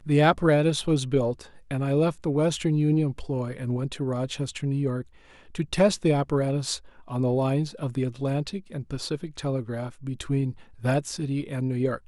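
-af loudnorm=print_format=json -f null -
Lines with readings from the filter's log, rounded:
"input_i" : "-27.0",
"input_tp" : "-6.5",
"input_lra" : "3.1",
"input_thresh" : "-37.1",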